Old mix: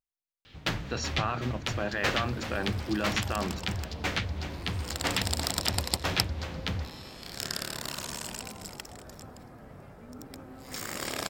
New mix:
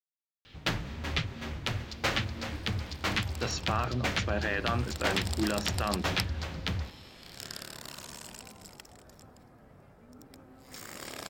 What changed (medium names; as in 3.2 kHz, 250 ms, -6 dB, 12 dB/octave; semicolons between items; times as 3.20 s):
speech: entry +2.50 s; second sound -7.5 dB